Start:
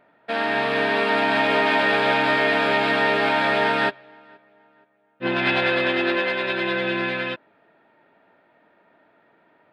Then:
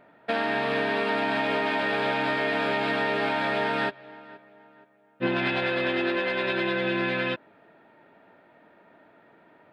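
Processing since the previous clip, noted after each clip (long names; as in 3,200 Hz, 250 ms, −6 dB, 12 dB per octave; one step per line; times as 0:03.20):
downward compressor, threshold −26 dBFS, peak gain reduction 10 dB
low-shelf EQ 450 Hz +4 dB
level +1.5 dB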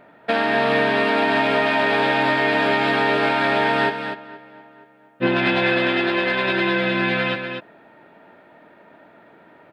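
single-tap delay 244 ms −8 dB
level +6.5 dB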